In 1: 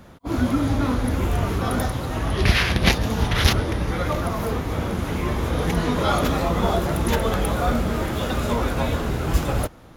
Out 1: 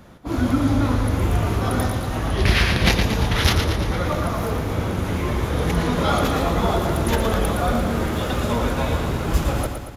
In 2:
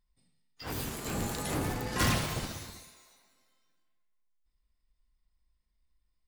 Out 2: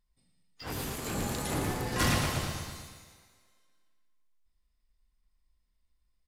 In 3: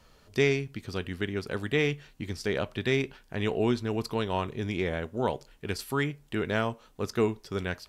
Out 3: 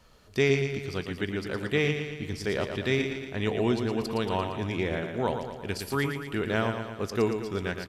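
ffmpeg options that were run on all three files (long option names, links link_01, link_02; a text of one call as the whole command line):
ffmpeg -i in.wav -af "aresample=32000,aresample=44100,aecho=1:1:115|230|345|460|575|690|805:0.447|0.259|0.15|0.0872|0.0505|0.0293|0.017,aeval=exprs='clip(val(0),-1,0.316)':channel_layout=same" out.wav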